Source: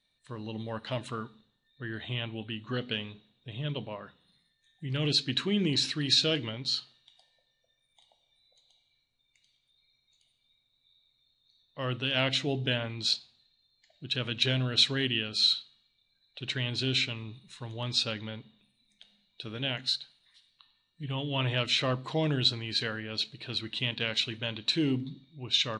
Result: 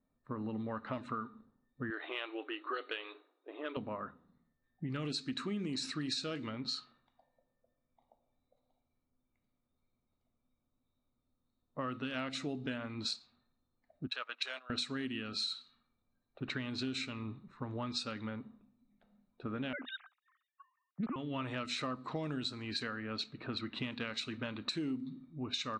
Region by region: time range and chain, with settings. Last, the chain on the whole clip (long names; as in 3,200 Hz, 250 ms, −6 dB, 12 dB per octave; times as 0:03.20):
0:01.90–0:03.77: linear-phase brick-wall band-pass 290–4,500 Hz + high-shelf EQ 2,500 Hz +8 dB
0:14.07–0:14.70: high-pass filter 620 Hz 24 dB per octave + noise gate −39 dBFS, range −16 dB
0:19.73–0:21.16: three sine waves on the formant tracks + highs frequency-modulated by the lows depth 0.32 ms
whole clip: low-pass that shuts in the quiet parts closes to 700 Hz, open at −25 dBFS; thirty-one-band graphic EQ 125 Hz −6 dB, 250 Hz +9 dB, 1,250 Hz +11 dB, 3,150 Hz −11 dB, 8,000 Hz +6 dB; downward compressor 6 to 1, threshold −39 dBFS; level +3 dB